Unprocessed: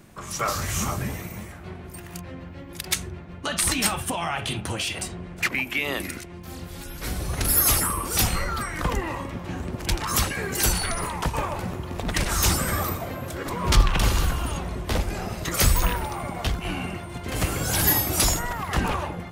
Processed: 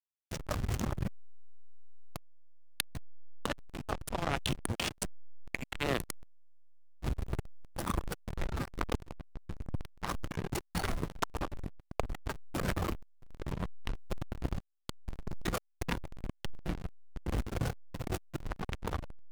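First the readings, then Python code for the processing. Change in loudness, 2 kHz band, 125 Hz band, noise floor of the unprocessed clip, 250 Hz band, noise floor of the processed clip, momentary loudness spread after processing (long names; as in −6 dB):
−13.5 dB, −13.5 dB, −10.5 dB, −40 dBFS, −9.5 dB, −71 dBFS, 11 LU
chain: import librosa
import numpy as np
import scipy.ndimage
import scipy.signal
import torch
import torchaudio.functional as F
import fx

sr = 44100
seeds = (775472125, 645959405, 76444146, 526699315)

y = fx.dereverb_blind(x, sr, rt60_s=0.84)
y = fx.peak_eq(y, sr, hz=9700.0, db=2.0, octaves=0.24)
y = fx.over_compress(y, sr, threshold_db=-28.0, ratio=-0.5)
y = fx.cheby_harmonics(y, sr, harmonics=(7,), levels_db=(-21,), full_scale_db=-8.0)
y = fx.backlash(y, sr, play_db=-20.5)
y = fx.buffer_crackle(y, sr, first_s=0.91, period_s=0.15, block=256, kind='repeat')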